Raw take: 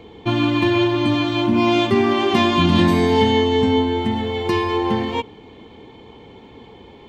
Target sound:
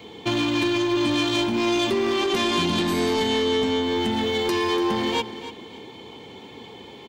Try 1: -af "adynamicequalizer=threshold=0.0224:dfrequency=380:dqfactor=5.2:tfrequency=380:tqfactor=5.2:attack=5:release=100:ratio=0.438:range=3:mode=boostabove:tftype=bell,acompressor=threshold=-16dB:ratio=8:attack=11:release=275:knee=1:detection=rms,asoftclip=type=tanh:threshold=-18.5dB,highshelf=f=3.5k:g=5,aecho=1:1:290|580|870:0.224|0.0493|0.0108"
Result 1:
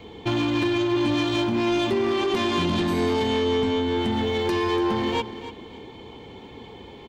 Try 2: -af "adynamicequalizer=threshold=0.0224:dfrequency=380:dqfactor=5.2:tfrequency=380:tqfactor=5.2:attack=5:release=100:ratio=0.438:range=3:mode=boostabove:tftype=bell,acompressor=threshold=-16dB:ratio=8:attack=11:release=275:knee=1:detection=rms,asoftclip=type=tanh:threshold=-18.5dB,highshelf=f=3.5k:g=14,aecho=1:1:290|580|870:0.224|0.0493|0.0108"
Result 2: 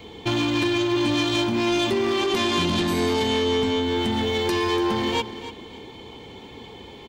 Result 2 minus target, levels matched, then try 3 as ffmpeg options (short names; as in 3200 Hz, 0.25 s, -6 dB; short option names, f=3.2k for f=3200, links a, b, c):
125 Hz band +3.0 dB
-af "adynamicequalizer=threshold=0.0224:dfrequency=380:dqfactor=5.2:tfrequency=380:tqfactor=5.2:attack=5:release=100:ratio=0.438:range=3:mode=boostabove:tftype=bell,acompressor=threshold=-16dB:ratio=8:attack=11:release=275:knee=1:detection=rms,highpass=120,asoftclip=type=tanh:threshold=-18.5dB,highshelf=f=3.5k:g=14,aecho=1:1:290|580|870:0.224|0.0493|0.0108"